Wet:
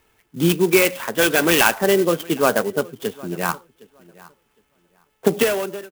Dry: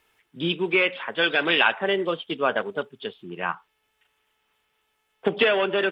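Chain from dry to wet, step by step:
fade-out on the ending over 0.79 s
low-shelf EQ 420 Hz +9.5 dB
on a send: feedback echo with a low-pass in the loop 762 ms, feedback 18%, low-pass 3,900 Hz, level −22 dB
on the sum: converter with an unsteady clock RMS 0.049 ms
level +3 dB

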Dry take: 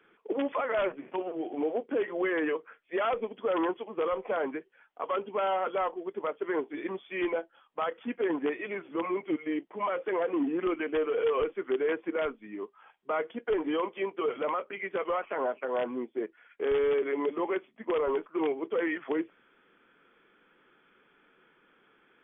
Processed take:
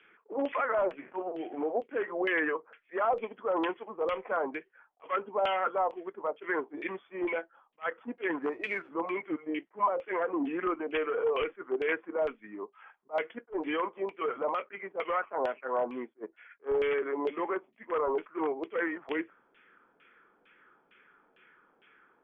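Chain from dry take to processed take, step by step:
0:08.42–0:08.90: variable-slope delta modulation 64 kbit/s
high-shelf EQ 2,500 Hz +11 dB
auto-filter low-pass saw down 2.2 Hz 670–2,900 Hz
level that may rise only so fast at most 450 dB per second
level −4 dB

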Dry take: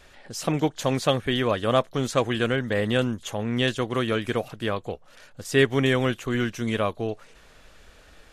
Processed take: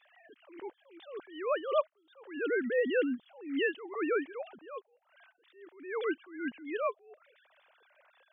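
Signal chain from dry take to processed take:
three sine waves on the formant tracks
level that may rise only so fast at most 110 dB per second
level −4.5 dB

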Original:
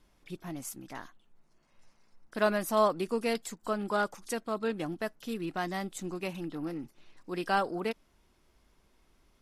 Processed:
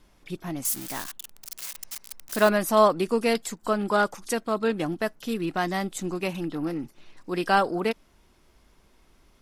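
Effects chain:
0:00.65–0:02.49: spike at every zero crossing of −31 dBFS
level +7 dB

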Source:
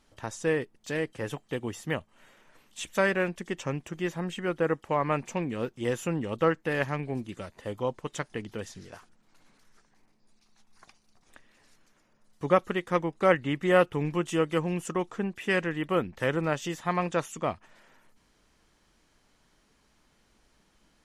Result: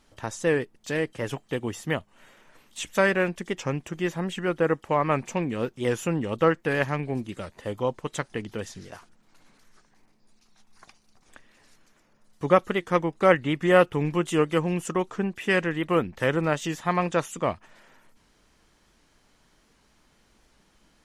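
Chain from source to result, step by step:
wow of a warped record 78 rpm, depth 100 cents
level +3.5 dB

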